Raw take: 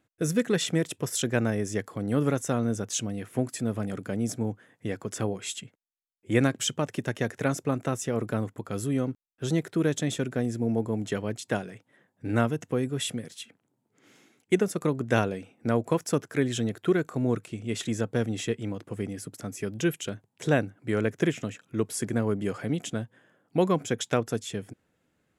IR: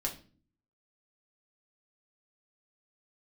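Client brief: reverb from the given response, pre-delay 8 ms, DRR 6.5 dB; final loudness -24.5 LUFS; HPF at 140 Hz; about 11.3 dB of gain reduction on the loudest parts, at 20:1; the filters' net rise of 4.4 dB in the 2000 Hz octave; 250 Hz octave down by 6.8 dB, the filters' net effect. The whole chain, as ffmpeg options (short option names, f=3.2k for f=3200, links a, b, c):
-filter_complex "[0:a]highpass=140,equalizer=f=250:t=o:g=-8.5,equalizer=f=2k:t=o:g=6,acompressor=threshold=-30dB:ratio=20,asplit=2[a][b];[1:a]atrim=start_sample=2205,adelay=8[c];[b][c]afir=irnorm=-1:irlink=0,volume=-9dB[d];[a][d]amix=inputs=2:normalize=0,volume=11.5dB"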